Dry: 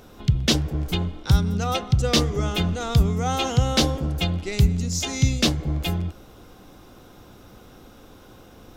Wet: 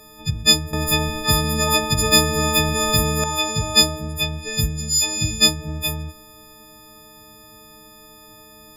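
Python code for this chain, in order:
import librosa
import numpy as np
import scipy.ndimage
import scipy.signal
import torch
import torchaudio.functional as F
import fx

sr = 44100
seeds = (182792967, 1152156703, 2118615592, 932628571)

y = fx.freq_snap(x, sr, grid_st=6)
y = fx.spectral_comp(y, sr, ratio=2.0, at=(0.73, 3.24))
y = F.gain(torch.from_numpy(y), -3.0).numpy()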